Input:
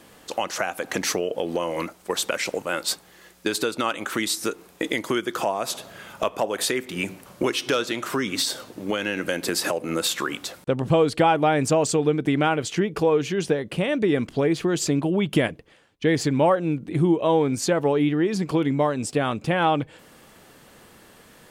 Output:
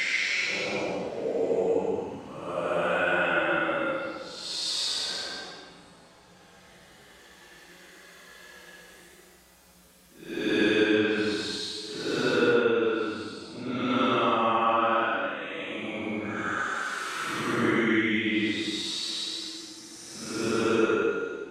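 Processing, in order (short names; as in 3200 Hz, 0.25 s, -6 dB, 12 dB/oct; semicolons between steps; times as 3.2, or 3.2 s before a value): treble ducked by the level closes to 1300 Hz, closed at -17.5 dBFS; Paulstretch 10×, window 0.10 s, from 2.4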